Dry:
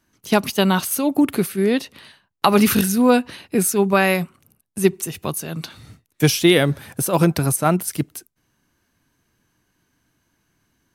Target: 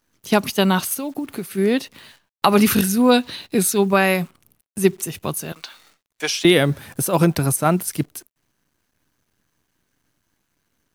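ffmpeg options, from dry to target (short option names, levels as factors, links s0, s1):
-filter_complex "[0:a]asplit=3[s0][s1][s2];[s0]afade=t=out:st=0.93:d=0.02[s3];[s1]acompressor=threshold=0.0631:ratio=10,afade=t=in:st=0.93:d=0.02,afade=t=out:st=1.5:d=0.02[s4];[s2]afade=t=in:st=1.5:d=0.02[s5];[s3][s4][s5]amix=inputs=3:normalize=0,asettb=1/sr,asplit=3[s6][s7][s8];[s6]atrim=end=5.524[s9];[s7]atrim=start=5.52:end=6.45,asetpts=PTS-STARTPTS,afade=t=in:d=0.004:c=qsin,afade=t=out:st=0.926:d=0.004:c=qsin,highpass=690,lowpass=6900[s10];[s8]atrim=start=6.446[s11];[s9][s10]acrossfade=d=0.004:c1=hsin:c2=qsin[s12];[s12][s11]acrossfade=d=0.004:c1=qsin:c2=hsin,acrusher=bits=9:dc=4:mix=0:aa=0.000001,asettb=1/sr,asplit=3[s13][s14][s15];[s13]atrim=end=3.114[s16];[s14]atrim=start=3.11:end=3.84,asetpts=PTS-STARTPTS,afade=t=in:d=0.004:c=qsin,afade=t=out:st=0.726:d=0.004:c=qsin,equalizer=f=3900:t=o:w=0.46:g=10.5[s17];[s15]atrim=start=3.836[s18];[s16][s17]acrossfade=d=0.004:c1=hsin:c2=qsin[s19];[s19][s18]acrossfade=d=0.004:c1=qsin:c2=hsin"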